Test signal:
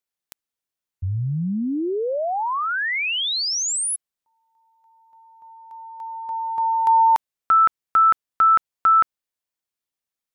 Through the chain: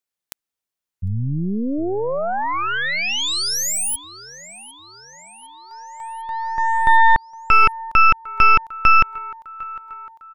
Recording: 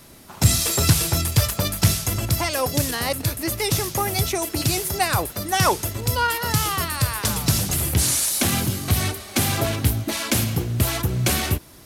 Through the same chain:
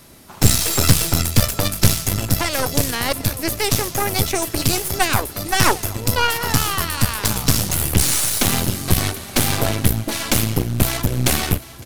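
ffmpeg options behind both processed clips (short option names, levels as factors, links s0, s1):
-af "aecho=1:1:753|1506|2259|3012|3765:0.126|0.0718|0.0409|0.0233|0.0133,aeval=exprs='0.75*(cos(1*acos(clip(val(0)/0.75,-1,1)))-cos(1*PI/2))+0.188*(cos(6*acos(clip(val(0)/0.75,-1,1)))-cos(6*PI/2))':c=same,volume=1.12"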